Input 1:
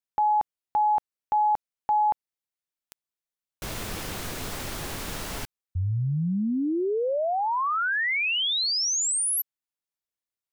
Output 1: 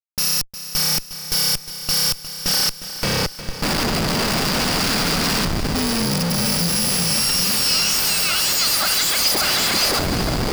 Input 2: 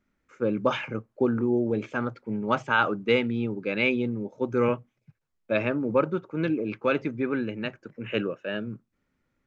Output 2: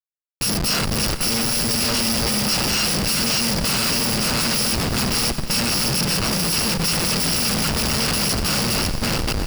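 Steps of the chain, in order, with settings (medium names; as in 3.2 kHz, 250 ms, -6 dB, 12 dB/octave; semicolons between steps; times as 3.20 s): bit-reversed sample order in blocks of 128 samples; in parallel at +1.5 dB: gain riding within 4 dB 2 s; on the sum: resonant low shelf 130 Hz -9 dB, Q 3; two-band feedback delay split 320 Hz, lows 386 ms, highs 570 ms, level -6 dB; peak limiter -10 dBFS; Schroeder reverb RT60 4 s, combs from 32 ms, DRR 18 dB; Schmitt trigger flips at -23 dBFS; peaking EQ 4.8 kHz +12 dB 0.23 oct; bit-crushed delay 358 ms, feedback 55%, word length 7-bit, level -12 dB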